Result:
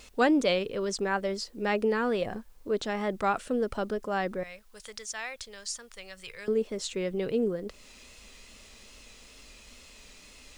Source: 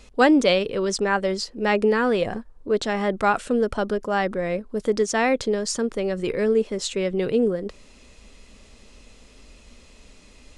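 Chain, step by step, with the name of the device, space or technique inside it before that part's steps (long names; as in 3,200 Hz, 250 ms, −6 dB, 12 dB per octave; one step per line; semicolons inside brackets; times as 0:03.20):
0:04.43–0:06.48: guitar amp tone stack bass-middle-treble 10-0-10
noise-reduction cassette on a plain deck (one half of a high-frequency compander encoder only; tape wow and flutter; white noise bed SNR 38 dB)
level −7 dB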